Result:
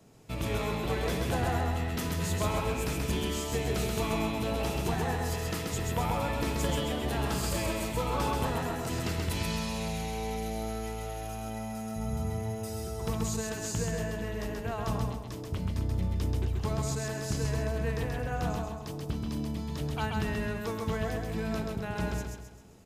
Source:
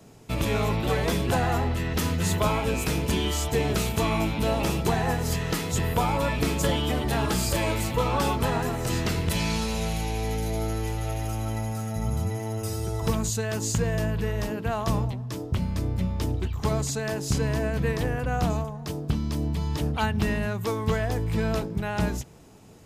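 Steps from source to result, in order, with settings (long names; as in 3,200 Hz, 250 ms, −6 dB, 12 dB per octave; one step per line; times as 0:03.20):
repeating echo 132 ms, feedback 42%, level −3 dB
level −7.5 dB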